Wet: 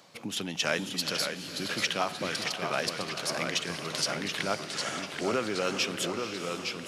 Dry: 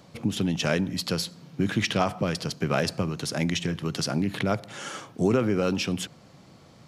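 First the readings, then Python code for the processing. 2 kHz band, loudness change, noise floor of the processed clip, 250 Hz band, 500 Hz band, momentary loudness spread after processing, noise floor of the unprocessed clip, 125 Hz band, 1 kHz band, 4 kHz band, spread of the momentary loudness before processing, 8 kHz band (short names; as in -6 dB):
+1.0 dB, -3.5 dB, -41 dBFS, -10.0 dB, -4.5 dB, 5 LU, -53 dBFS, -13.0 dB, -1.0 dB, +1.5 dB, 7 LU, +1.5 dB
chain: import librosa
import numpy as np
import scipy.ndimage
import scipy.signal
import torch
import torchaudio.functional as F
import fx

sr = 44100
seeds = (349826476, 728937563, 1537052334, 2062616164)

y = fx.highpass(x, sr, hz=930.0, slope=6)
y = fx.echo_pitch(y, sr, ms=518, semitones=-1, count=3, db_per_echo=-6.0)
y = fx.rider(y, sr, range_db=3, speed_s=2.0)
y = fx.echo_diffused(y, sr, ms=479, feedback_pct=45, wet_db=-10.0)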